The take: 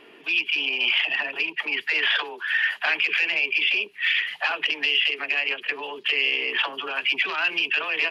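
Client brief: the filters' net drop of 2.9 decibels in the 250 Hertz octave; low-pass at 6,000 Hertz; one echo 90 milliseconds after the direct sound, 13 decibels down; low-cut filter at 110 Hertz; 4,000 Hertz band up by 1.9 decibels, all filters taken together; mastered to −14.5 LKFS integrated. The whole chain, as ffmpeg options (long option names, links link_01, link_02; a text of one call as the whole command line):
ffmpeg -i in.wav -af "highpass=110,lowpass=6000,equalizer=frequency=250:width_type=o:gain=-4,equalizer=frequency=4000:width_type=o:gain=3.5,aecho=1:1:90:0.224,volume=6.5dB" out.wav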